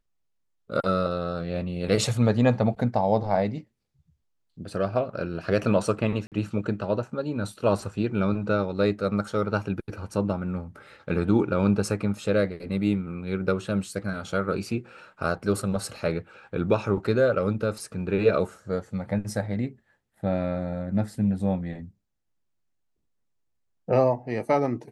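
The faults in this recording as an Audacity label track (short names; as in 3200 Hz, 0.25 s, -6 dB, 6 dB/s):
6.270000	6.320000	gap 48 ms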